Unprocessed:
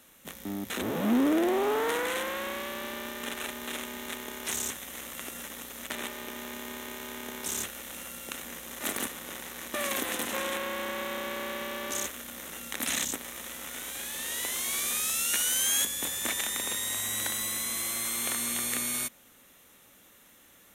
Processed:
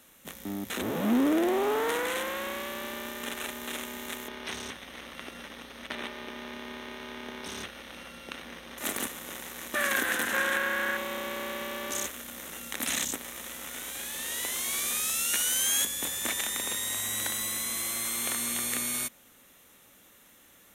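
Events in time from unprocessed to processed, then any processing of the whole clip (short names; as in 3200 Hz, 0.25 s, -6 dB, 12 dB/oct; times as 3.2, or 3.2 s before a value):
4.28–8.78 polynomial smoothing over 15 samples
9.75–10.97 bell 1600 Hz +14.5 dB 0.4 oct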